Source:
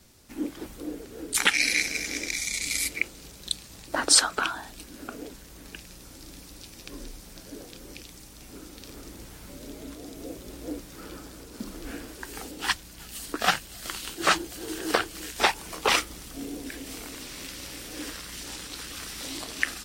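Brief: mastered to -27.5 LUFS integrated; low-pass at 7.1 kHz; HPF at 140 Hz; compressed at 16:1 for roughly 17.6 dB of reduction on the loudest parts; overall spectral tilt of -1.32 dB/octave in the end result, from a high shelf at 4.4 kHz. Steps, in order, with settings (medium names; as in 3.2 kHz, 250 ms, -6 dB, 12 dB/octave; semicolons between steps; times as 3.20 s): high-pass 140 Hz; low-pass 7.1 kHz; treble shelf 4.4 kHz +5.5 dB; compression 16:1, threshold -30 dBFS; trim +9.5 dB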